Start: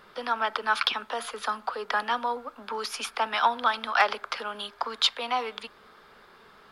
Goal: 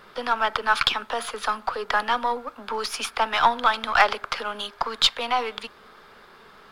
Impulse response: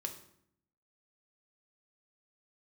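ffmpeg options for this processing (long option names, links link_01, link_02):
-af "aeval=exprs='if(lt(val(0),0),0.708*val(0),val(0))':channel_layout=same,volume=5.5dB"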